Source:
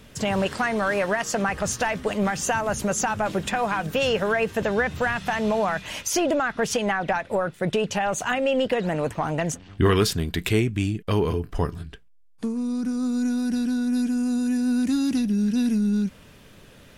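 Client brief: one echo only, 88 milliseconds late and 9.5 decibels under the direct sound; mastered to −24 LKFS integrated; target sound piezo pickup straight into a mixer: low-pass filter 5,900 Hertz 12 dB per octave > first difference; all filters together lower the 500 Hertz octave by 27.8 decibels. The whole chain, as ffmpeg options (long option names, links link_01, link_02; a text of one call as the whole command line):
ffmpeg -i in.wav -af "lowpass=5900,aderivative,equalizer=frequency=500:width_type=o:gain=-6.5,aecho=1:1:88:0.335,volume=15dB" out.wav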